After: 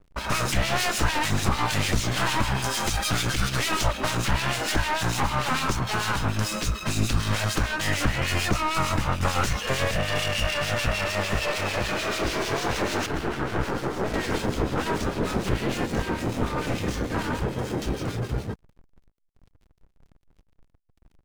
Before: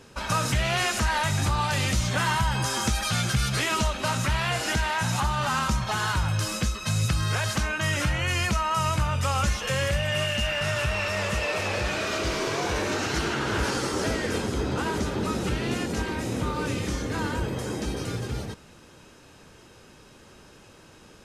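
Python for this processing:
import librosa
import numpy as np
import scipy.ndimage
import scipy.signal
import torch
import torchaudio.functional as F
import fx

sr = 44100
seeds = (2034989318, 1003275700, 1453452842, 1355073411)

y = np.minimum(x, 2.0 * 10.0 ** (-28.0 / 20.0) - x)
y = fx.high_shelf(y, sr, hz=2700.0, db=-11.5, at=(13.06, 14.14))
y = fx.backlash(y, sr, play_db=-36.0)
y = fx.harmonic_tremolo(y, sr, hz=6.7, depth_pct=70, crossover_hz=2100.0)
y = y * librosa.db_to_amplitude(6.5)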